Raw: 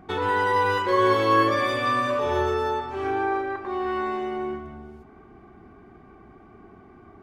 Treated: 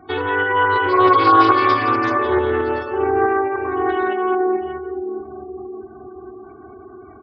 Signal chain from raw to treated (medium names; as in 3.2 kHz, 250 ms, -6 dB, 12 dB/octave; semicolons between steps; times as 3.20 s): high-pass 81 Hz 12 dB/octave; comb 2.7 ms, depth 69%; two-band feedback delay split 640 Hz, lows 627 ms, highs 171 ms, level -4.5 dB; spectral gate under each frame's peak -25 dB strong; tremolo saw up 4.6 Hz, depth 30%; reverberation RT60 1.0 s, pre-delay 52 ms, DRR 18.5 dB; loudspeaker Doppler distortion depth 0.16 ms; trim +4 dB